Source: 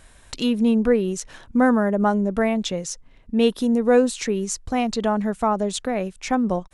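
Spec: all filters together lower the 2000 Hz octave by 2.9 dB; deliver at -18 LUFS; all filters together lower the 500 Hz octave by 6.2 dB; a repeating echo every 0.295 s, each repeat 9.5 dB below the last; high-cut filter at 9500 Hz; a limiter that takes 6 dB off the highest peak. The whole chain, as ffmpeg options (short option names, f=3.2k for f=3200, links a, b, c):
-af "lowpass=9.5k,equalizer=f=500:t=o:g=-7,equalizer=f=2k:t=o:g=-3.5,alimiter=limit=-15.5dB:level=0:latency=1,aecho=1:1:295|590|885|1180:0.335|0.111|0.0365|0.012,volume=7.5dB"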